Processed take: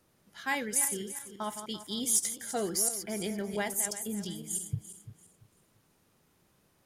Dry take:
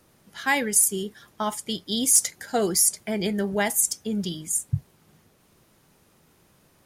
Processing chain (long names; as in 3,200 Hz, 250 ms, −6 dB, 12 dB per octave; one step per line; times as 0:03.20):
feedback delay that plays each chunk backwards 170 ms, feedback 50%, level −9 dB
level −9 dB